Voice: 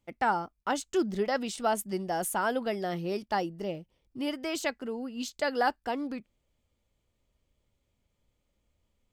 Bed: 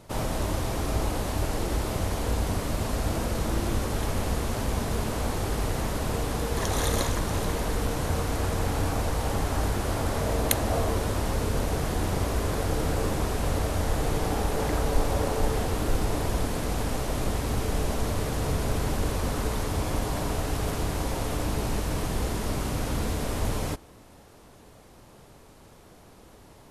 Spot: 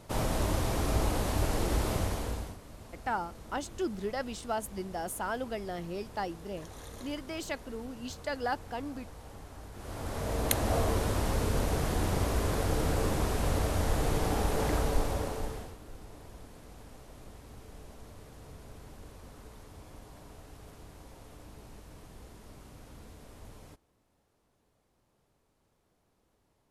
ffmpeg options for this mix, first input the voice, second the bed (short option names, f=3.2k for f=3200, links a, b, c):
-filter_complex "[0:a]adelay=2850,volume=-5.5dB[a];[1:a]volume=16.5dB,afade=t=out:st=1.92:d=0.65:silence=0.112202,afade=t=in:st=9.72:d=0.99:silence=0.125893,afade=t=out:st=14.74:d=1.03:silence=0.105925[b];[a][b]amix=inputs=2:normalize=0"